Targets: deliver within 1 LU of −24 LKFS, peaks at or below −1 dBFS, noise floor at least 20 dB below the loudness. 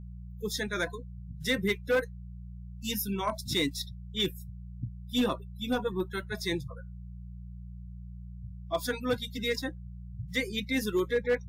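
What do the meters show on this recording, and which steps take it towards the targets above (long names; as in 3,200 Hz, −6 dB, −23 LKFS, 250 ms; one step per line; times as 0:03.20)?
share of clipped samples 0.3%; peaks flattened at −20.5 dBFS; mains hum 60 Hz; hum harmonics up to 180 Hz; level of the hum −41 dBFS; integrated loudness −32.0 LKFS; sample peak −20.5 dBFS; target loudness −24.0 LKFS
→ clipped peaks rebuilt −20.5 dBFS
hum removal 60 Hz, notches 3
level +8 dB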